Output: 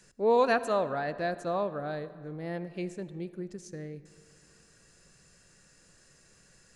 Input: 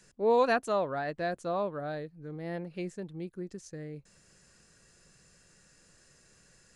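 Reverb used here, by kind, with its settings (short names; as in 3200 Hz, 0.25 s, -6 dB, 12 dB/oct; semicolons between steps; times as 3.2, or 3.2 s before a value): digital reverb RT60 2.3 s, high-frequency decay 0.55×, pre-delay 30 ms, DRR 14.5 dB; gain +1 dB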